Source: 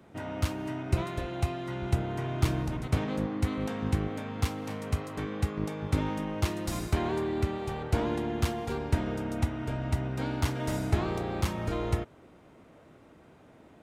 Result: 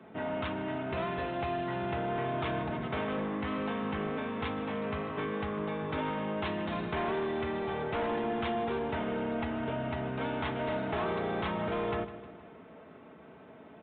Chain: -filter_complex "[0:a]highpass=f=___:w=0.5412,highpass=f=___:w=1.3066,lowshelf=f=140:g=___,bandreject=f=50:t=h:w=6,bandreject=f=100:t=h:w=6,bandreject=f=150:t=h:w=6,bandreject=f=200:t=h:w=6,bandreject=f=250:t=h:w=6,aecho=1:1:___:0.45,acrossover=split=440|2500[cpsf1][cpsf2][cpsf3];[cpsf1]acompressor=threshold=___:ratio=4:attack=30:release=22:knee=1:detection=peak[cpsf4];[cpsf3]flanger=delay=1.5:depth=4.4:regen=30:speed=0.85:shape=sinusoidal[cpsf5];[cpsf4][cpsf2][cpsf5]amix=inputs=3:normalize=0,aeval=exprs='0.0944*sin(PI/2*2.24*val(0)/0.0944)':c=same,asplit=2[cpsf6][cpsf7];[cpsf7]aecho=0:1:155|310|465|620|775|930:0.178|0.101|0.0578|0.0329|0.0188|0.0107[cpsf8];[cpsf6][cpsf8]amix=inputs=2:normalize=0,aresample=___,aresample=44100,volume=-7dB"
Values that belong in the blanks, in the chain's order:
74, 74, -5.5, 4.6, -45dB, 8000